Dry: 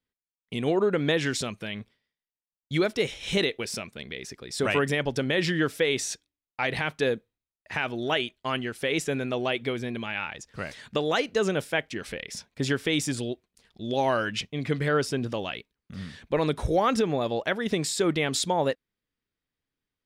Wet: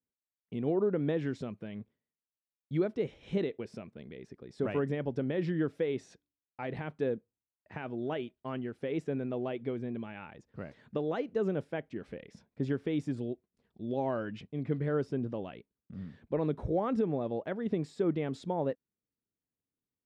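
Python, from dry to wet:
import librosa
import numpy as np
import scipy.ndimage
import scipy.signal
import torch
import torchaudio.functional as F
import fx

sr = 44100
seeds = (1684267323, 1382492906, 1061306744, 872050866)

y = fx.bandpass_q(x, sr, hz=220.0, q=0.54)
y = y * 10.0 ** (-3.5 / 20.0)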